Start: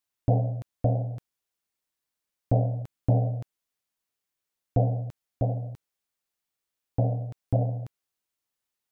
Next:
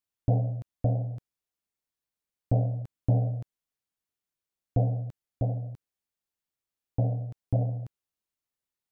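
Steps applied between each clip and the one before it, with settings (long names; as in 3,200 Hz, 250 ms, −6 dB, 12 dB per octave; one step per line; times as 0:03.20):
low-shelf EQ 360 Hz +6 dB
level −6.5 dB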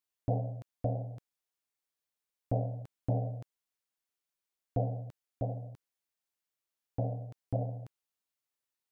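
low-shelf EQ 250 Hz −10 dB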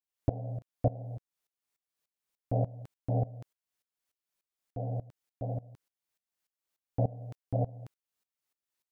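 tremolo with a ramp in dB swelling 3.4 Hz, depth 20 dB
level +7.5 dB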